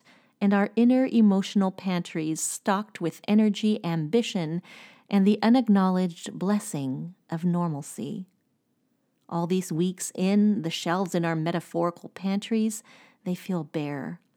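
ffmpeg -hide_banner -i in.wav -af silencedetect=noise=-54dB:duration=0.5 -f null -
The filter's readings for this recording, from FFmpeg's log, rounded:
silence_start: 8.28
silence_end: 9.29 | silence_duration: 1.01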